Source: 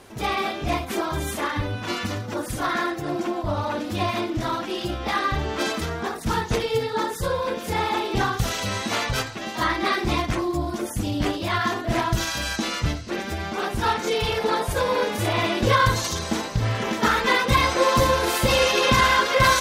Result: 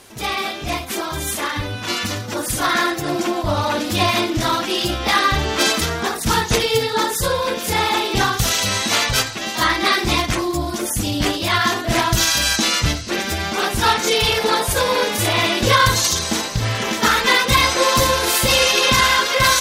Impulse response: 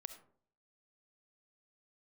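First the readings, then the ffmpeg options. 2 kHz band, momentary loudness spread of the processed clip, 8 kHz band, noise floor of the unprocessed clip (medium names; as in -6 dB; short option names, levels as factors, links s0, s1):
+6.0 dB, 9 LU, +11.5 dB, -33 dBFS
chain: -af "highshelf=f=2400:g=10.5,dynaudnorm=f=970:g=5:m=3.76,volume=0.891"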